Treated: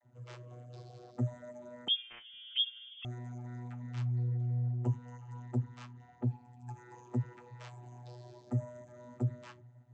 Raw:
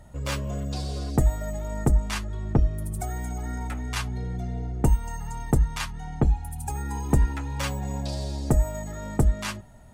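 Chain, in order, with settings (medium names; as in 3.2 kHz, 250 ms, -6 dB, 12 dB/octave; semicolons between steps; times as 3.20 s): coarse spectral quantiser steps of 15 dB; vocoder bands 32, saw 122 Hz; 1.88–3.05 s: frequency inversion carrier 3.4 kHz; trim -6 dB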